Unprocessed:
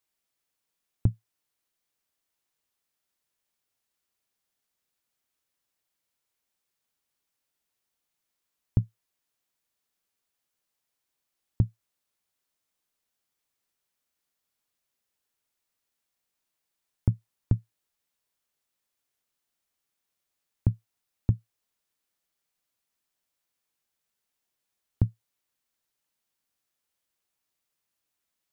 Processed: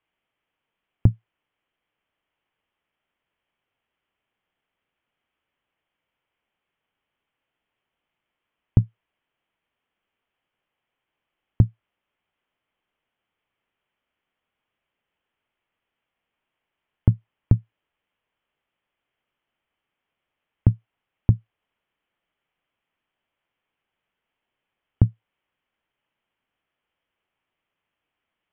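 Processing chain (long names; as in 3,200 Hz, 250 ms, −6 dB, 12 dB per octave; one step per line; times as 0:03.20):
Chebyshev low-pass filter 3,200 Hz, order 6
level +8 dB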